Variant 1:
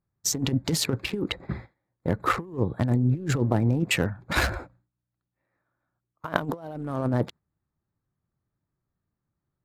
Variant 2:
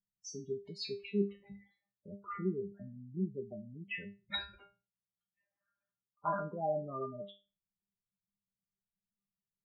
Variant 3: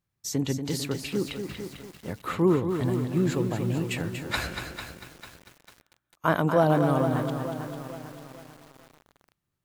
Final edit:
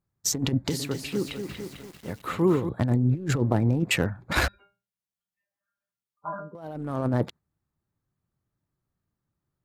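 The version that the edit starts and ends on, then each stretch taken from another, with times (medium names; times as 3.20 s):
1
0.70–2.69 s: from 3
4.48–6.55 s: from 2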